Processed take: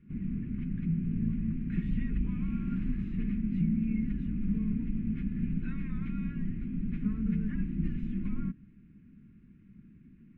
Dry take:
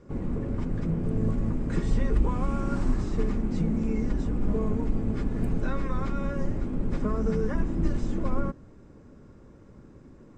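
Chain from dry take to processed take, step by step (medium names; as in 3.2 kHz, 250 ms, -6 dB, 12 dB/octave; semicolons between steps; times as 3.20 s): FFT filter 110 Hz 0 dB, 200 Hz +11 dB, 380 Hz -10 dB, 570 Hz -29 dB, 980 Hz -19 dB, 1.6 kHz -2 dB, 2.5 kHz +7 dB, 5.1 kHz -21 dB, 7.7 kHz -23 dB; trim -8.5 dB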